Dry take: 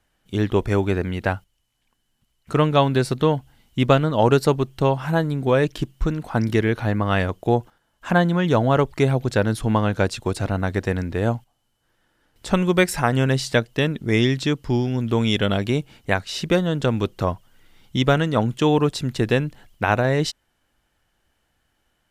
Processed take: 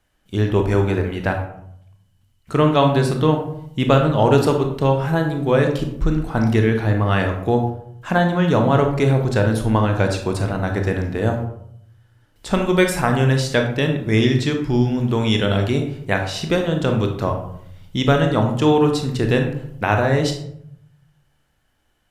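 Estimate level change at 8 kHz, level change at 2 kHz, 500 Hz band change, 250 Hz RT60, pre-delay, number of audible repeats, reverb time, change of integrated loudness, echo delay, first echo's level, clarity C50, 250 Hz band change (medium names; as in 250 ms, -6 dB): +1.0 dB, +1.5 dB, +2.0 dB, 0.90 s, 19 ms, no echo, 0.70 s, +2.5 dB, no echo, no echo, 6.5 dB, +2.5 dB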